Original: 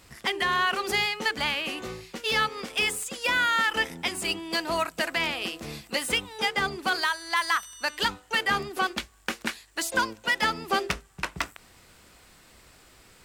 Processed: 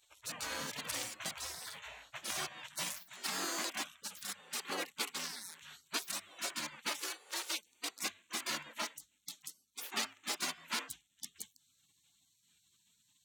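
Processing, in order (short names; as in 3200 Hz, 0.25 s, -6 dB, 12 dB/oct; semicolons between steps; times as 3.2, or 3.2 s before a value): Wiener smoothing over 9 samples; high-pass sweep 180 Hz -> 550 Hz, 1.81–4; spectral gate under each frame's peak -25 dB weak; gain +3.5 dB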